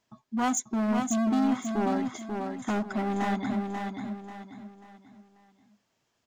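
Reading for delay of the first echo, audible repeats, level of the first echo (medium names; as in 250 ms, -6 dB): 539 ms, 4, -5.0 dB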